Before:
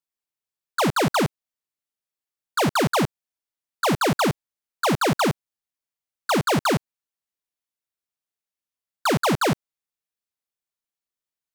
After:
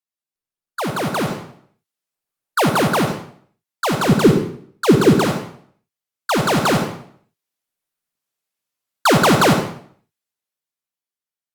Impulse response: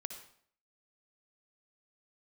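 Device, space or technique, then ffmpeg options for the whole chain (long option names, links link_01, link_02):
far-field microphone of a smart speaker: -filter_complex "[0:a]asettb=1/sr,asplit=3[link_01][link_02][link_03];[link_01]atrim=end=4.094[link_04];[link_02]atrim=start=4.09:end=5.16,asetpts=PTS-STARTPTS,afade=type=in:duration=0.004:curve=qsin,afade=type=out:start_time=1.066:duration=0.004:curve=qsin,lowshelf=frequency=510:width_type=q:width=3:gain=7.5[link_05];[link_03]atrim=start=5.156[link_06];[link_04][link_05]acrossfade=duration=0.004:curve1=hsin:curve2=qsin[link_07];[link_07][link_06]acrossfade=duration=0.004:curve1=qsin:curve2=hsin[link_08];[1:a]atrim=start_sample=2205[link_09];[link_08][link_09]afir=irnorm=-1:irlink=0,highpass=frequency=84:width=0.5412,highpass=frequency=84:width=1.3066,dynaudnorm=framelen=250:gausssize=13:maxgain=16dB,volume=-1dB" -ar 48000 -c:a libopus -b:a 48k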